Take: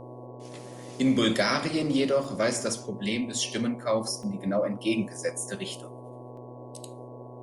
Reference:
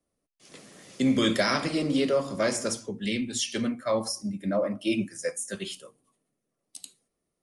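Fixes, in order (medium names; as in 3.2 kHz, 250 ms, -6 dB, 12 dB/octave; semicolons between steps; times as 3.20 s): de-hum 123.3 Hz, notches 9; interpolate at 2.24/4.23/6.37 s, 2.9 ms; noise print and reduce 30 dB; trim 0 dB, from 6.31 s +3.5 dB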